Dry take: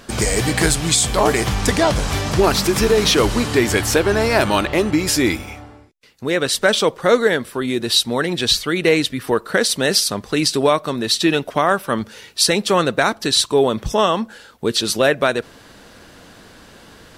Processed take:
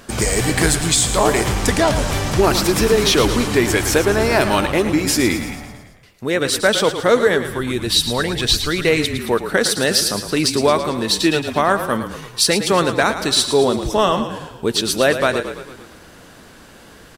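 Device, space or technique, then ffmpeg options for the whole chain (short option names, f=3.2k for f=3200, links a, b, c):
exciter from parts: -filter_complex "[0:a]asplit=2[a][b];[b]highpass=3k,asoftclip=type=tanh:threshold=-27dB,highpass=4.1k,volume=-8dB[c];[a][c]amix=inputs=2:normalize=0,asplit=8[d][e][f][g][h][i][j][k];[e]adelay=111,afreqshift=-33,volume=-10dB[l];[f]adelay=222,afreqshift=-66,volume=-14.9dB[m];[g]adelay=333,afreqshift=-99,volume=-19.8dB[n];[h]adelay=444,afreqshift=-132,volume=-24.6dB[o];[i]adelay=555,afreqshift=-165,volume=-29.5dB[p];[j]adelay=666,afreqshift=-198,volume=-34.4dB[q];[k]adelay=777,afreqshift=-231,volume=-39.3dB[r];[d][l][m][n][o][p][q][r]amix=inputs=8:normalize=0,asplit=3[s][t][u];[s]afade=t=out:st=7.44:d=0.02[v];[t]asubboost=boost=3.5:cutoff=110,afade=t=in:st=7.44:d=0.02,afade=t=out:st=9.17:d=0.02[w];[u]afade=t=in:st=9.17:d=0.02[x];[v][w][x]amix=inputs=3:normalize=0"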